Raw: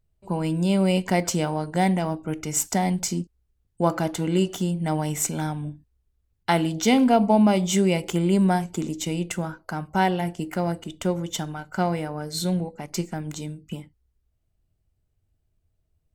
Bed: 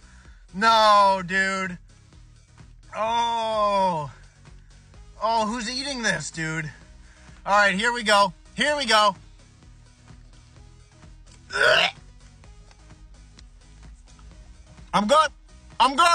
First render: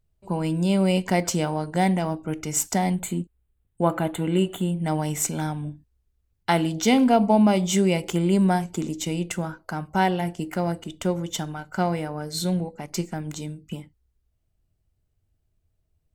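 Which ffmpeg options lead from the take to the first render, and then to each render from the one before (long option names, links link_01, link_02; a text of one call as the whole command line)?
ffmpeg -i in.wav -filter_complex "[0:a]asettb=1/sr,asplit=3[link_01][link_02][link_03];[link_01]atrim=end=2.954[link_04];[link_02]atrim=start=2.95:end=4.85,asetpts=PTS-STARTPTS,afade=type=in:duration=0.004:curve=qsin,afade=type=out:start_time=1.896:duration=0.004:curve=qsin,asuperstop=centerf=5400:order=4:qfactor=1.4[link_05];[link_03]atrim=start=4.846[link_06];[link_04][link_05]acrossfade=duration=0.004:curve1=hsin:curve2=qsin[link_07];[link_07][link_06]acrossfade=duration=0.004:curve1=qsin:curve2=hsin" out.wav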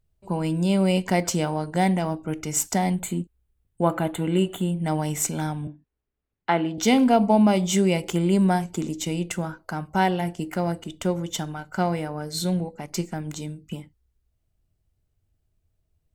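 ffmpeg -i in.wav -filter_complex "[0:a]asettb=1/sr,asplit=3[link_01][link_02][link_03];[link_01]atrim=end=5.674[link_04];[link_02]atrim=start=5.67:end=6.78,asetpts=PTS-STARTPTS,afade=type=in:duration=0.004:curve=qsin,afade=type=out:start_time=1.106:duration=0.004:curve=qsin,acrossover=split=170 3100:gain=0.158 1 0.0794[link_05][link_06][link_07];[link_05][link_06][link_07]amix=inputs=3:normalize=0[link_08];[link_03]atrim=start=6.776[link_09];[link_04][link_08]acrossfade=duration=0.004:curve1=hsin:curve2=qsin[link_10];[link_10][link_09]acrossfade=duration=0.004:curve1=qsin:curve2=hsin" out.wav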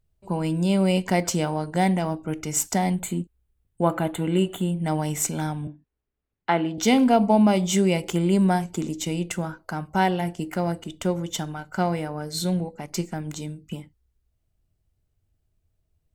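ffmpeg -i in.wav -af anull out.wav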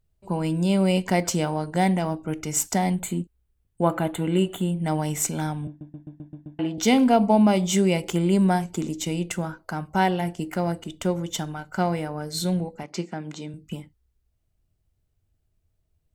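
ffmpeg -i in.wav -filter_complex "[0:a]asettb=1/sr,asplit=3[link_01][link_02][link_03];[link_01]atrim=end=12.834[link_04];[link_02]atrim=start=12.83:end=13.54,asetpts=PTS-STARTPTS,afade=type=in:duration=0.004:curve=qsin,afade=type=out:start_time=0.706:duration=0.004:curve=qsin,highpass=180,lowpass=4900[link_05];[link_03]atrim=start=13.536[link_06];[link_04][link_05]acrossfade=duration=0.004:curve1=hsin:curve2=qsin[link_07];[link_07][link_06]acrossfade=duration=0.004:curve1=qsin:curve2=hsin,asplit=8[link_08][link_09][link_10][link_11][link_12][link_13][link_14][link_15];[link_08]atrim=end=5.812[link_16];[link_09]atrim=start=5.678:end=5.812[link_17];[link_10]atrim=start=5.678:end=5.812[link_18];[link_11]atrim=start=5.678:end=5.812[link_19];[link_12]atrim=start=5.678:end=5.812[link_20];[link_13]atrim=start=5.678:end=5.812[link_21];[link_14]atrim=start=5.678:end=5.812[link_22];[link_15]atrim=start=6.588[link_23];[link_16][link_17]acrossfade=duration=0.004:curve1=hsin:curve2=hsin[link_24];[link_24][link_18]acrossfade=duration=0.004:curve1=hsin:curve2=hsin[link_25];[link_25][link_19]acrossfade=duration=0.004:curve1=hsin:curve2=hsin[link_26];[link_26][link_20]acrossfade=duration=0.004:curve1=hsin:curve2=hsin[link_27];[link_27][link_21]acrossfade=duration=0.004:curve1=hsin:curve2=hsin[link_28];[link_28][link_22]acrossfade=duration=0.004:curve1=hsin:curve2=hsin[link_29];[link_29][link_23]acrossfade=duration=0.004:curve1=hsin:curve2=hsin" out.wav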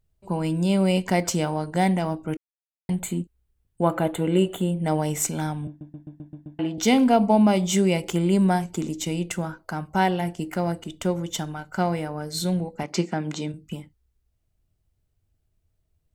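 ffmpeg -i in.wav -filter_complex "[0:a]asettb=1/sr,asplit=3[link_01][link_02][link_03];[link_01]atrim=end=3.974[link_04];[link_02]atrim=start=3.97:end=5.18,asetpts=PTS-STARTPTS,afade=type=in:duration=0.004:curve=qsin,afade=type=out:start_time=1.206:duration=0.004:curve=qsin,equalizer=frequency=500:width=2:gain=6[link_05];[link_03]atrim=start=5.176[link_06];[link_04][link_05]acrossfade=duration=0.004:curve1=hsin:curve2=qsin[link_07];[link_07][link_06]acrossfade=duration=0.004:curve1=qsin:curve2=hsin,asettb=1/sr,asplit=3[link_08][link_09][link_10];[link_08]atrim=end=12.794[link_11];[link_09]atrim=start=12.79:end=13.52,asetpts=PTS-STARTPTS,afade=type=in:duration=0.004:curve=qsin,afade=type=out:start_time=0.726:duration=0.004:curve=qsin,acontrast=48[link_12];[link_10]atrim=start=13.516[link_13];[link_11][link_12]acrossfade=duration=0.004:curve1=hsin:curve2=qsin[link_14];[link_14][link_13]acrossfade=duration=0.004:curve1=qsin:curve2=hsin,asplit=3[link_15][link_16][link_17];[link_15]atrim=end=2.37,asetpts=PTS-STARTPTS,afade=type=out:start_time=2.366:duration=0.004:curve=hsin[link_18];[link_16]atrim=start=2.37:end=2.89,asetpts=PTS-STARTPTS,volume=0[link_19];[link_17]atrim=start=2.89,asetpts=PTS-STARTPTS,afade=type=in:duration=0.004:curve=hsin[link_20];[link_18][link_19][link_20]concat=n=3:v=0:a=1" out.wav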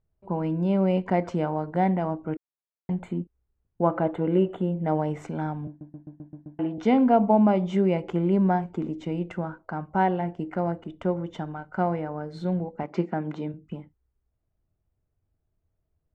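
ffmpeg -i in.wav -af "lowpass=1400,lowshelf=frequency=150:gain=-6" out.wav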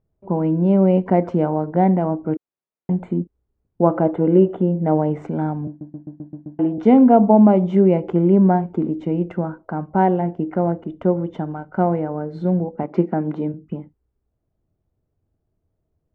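ffmpeg -i in.wav -af "lowpass=frequency=2300:poles=1,equalizer=frequency=310:width=0.36:gain=9" out.wav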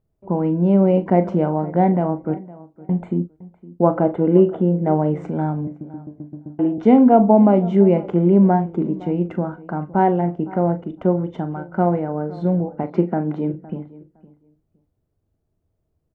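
ffmpeg -i in.wav -filter_complex "[0:a]asplit=2[link_01][link_02];[link_02]adelay=40,volume=-12dB[link_03];[link_01][link_03]amix=inputs=2:normalize=0,asplit=2[link_04][link_05];[link_05]adelay=512,lowpass=frequency=2600:poles=1,volume=-19.5dB,asplit=2[link_06][link_07];[link_07]adelay=512,lowpass=frequency=2600:poles=1,volume=0.17[link_08];[link_04][link_06][link_08]amix=inputs=3:normalize=0" out.wav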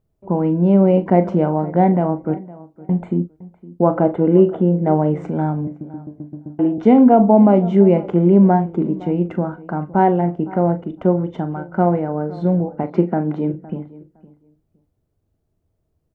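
ffmpeg -i in.wav -af "volume=2dB,alimiter=limit=-2dB:level=0:latency=1" out.wav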